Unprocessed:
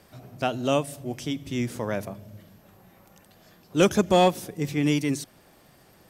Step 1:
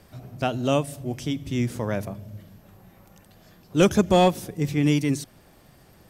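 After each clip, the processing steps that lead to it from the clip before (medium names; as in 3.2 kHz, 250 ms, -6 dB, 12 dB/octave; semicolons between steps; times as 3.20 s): bass shelf 140 Hz +9.5 dB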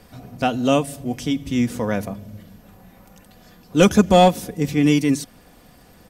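comb 4.1 ms, depth 44%; trim +4 dB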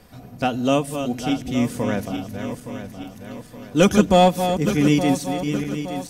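backward echo that repeats 434 ms, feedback 68%, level -8 dB; trim -1.5 dB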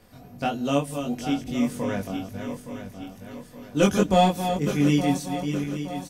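doubling 21 ms -2 dB; trim -6.5 dB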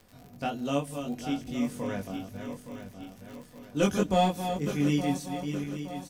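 crackle 83 per s -36 dBFS; trim -5.5 dB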